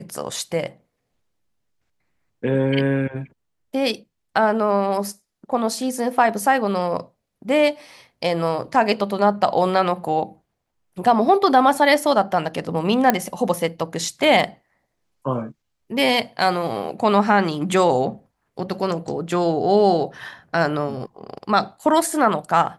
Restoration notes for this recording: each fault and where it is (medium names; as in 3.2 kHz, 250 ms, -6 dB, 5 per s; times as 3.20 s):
13.10 s: pop -2 dBFS